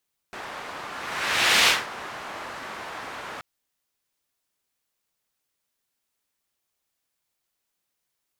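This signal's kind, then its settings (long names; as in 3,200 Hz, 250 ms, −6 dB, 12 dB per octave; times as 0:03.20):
pass-by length 3.08 s, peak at 0:01.33, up 0.81 s, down 0.23 s, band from 1,200 Hz, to 2,800 Hz, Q 1, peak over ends 19 dB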